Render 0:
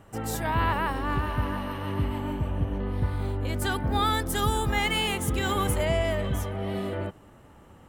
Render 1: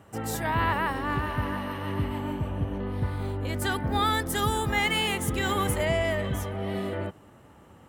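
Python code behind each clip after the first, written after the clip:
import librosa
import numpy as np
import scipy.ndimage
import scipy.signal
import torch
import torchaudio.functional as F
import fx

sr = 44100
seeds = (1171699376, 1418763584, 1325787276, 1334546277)

y = scipy.signal.sosfilt(scipy.signal.butter(2, 72.0, 'highpass', fs=sr, output='sos'), x)
y = fx.dynamic_eq(y, sr, hz=1900.0, q=6.3, threshold_db=-51.0, ratio=4.0, max_db=5)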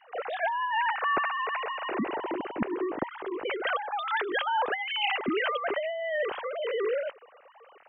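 y = fx.sine_speech(x, sr)
y = fx.over_compress(y, sr, threshold_db=-29.0, ratio=-1.0)
y = y * librosa.db_to_amplitude(1.0)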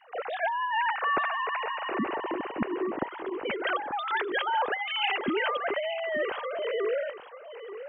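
y = x + 10.0 ** (-12.0 / 20.0) * np.pad(x, (int(883 * sr / 1000.0), 0))[:len(x)]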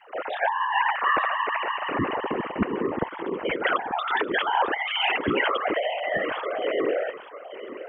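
y = fx.whisperise(x, sr, seeds[0])
y = y * librosa.db_to_amplitude(4.0)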